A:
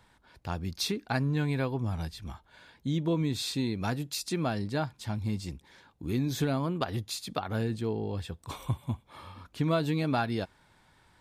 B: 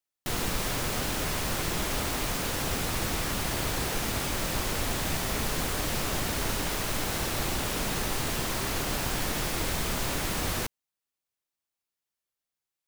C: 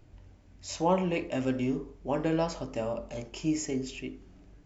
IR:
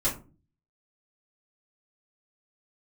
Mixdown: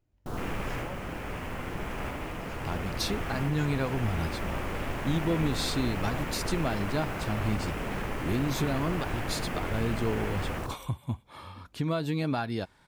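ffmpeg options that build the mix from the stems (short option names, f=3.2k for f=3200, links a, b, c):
-filter_complex "[0:a]alimiter=limit=-22.5dB:level=0:latency=1:release=382,adelay=2200,volume=2dB[a];[1:a]afwtdn=0.0178,volume=-3dB,asplit=2[b][c];[c]volume=-3.5dB[d];[2:a]volume=-18.5dB,asplit=2[e][f];[f]apad=whole_len=567928[g];[b][g]sidechaincompress=threshold=-48dB:ratio=8:attack=45:release=1160[h];[d]aecho=0:1:75:1[i];[a][h][e][i]amix=inputs=4:normalize=0"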